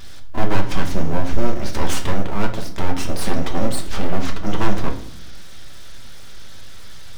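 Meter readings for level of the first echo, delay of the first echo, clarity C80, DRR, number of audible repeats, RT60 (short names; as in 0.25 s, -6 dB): none, none, 14.0 dB, 3.0 dB, none, 0.70 s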